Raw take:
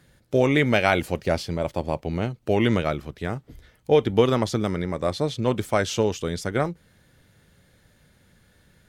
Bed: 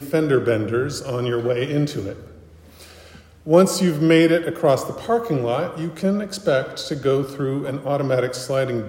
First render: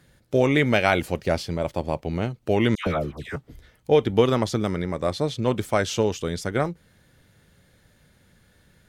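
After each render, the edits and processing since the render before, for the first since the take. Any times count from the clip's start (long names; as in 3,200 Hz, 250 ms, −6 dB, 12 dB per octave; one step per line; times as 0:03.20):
0:02.75–0:03.36: all-pass dispersion lows, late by 116 ms, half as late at 1,400 Hz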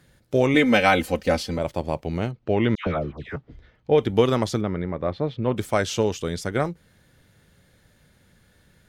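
0:00.54–0:01.59: comb filter 3.9 ms, depth 90%
0:02.31–0:03.98: high-frequency loss of the air 200 metres
0:04.61–0:05.57: high-frequency loss of the air 380 metres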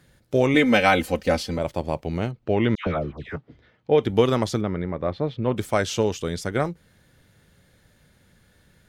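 0:03.37–0:04.04: band-pass filter 120–6,600 Hz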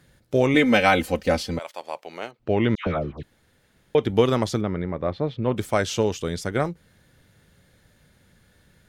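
0:01.58–0:02.38: high-pass filter 1,100 Hz → 510 Hz
0:03.23–0:03.95: fill with room tone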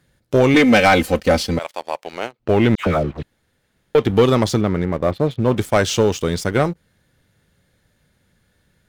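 leveller curve on the samples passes 2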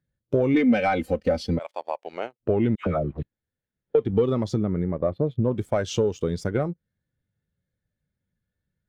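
downward compressor 6 to 1, threshold −21 dBFS, peak gain reduction 11.5 dB
every bin expanded away from the loudest bin 1.5 to 1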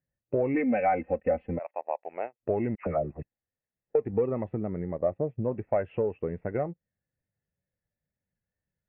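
tape wow and flutter 29 cents
Chebyshev low-pass with heavy ripple 2,700 Hz, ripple 9 dB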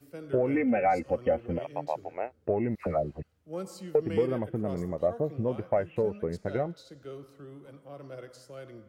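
mix in bed −23.5 dB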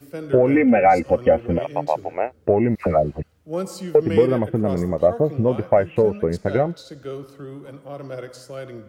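level +10.5 dB
brickwall limiter −3 dBFS, peak gain reduction 1 dB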